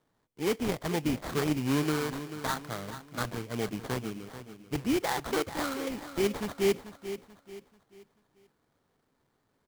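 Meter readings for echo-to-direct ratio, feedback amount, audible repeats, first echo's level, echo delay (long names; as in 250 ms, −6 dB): −11.5 dB, 38%, 3, −12.0 dB, 437 ms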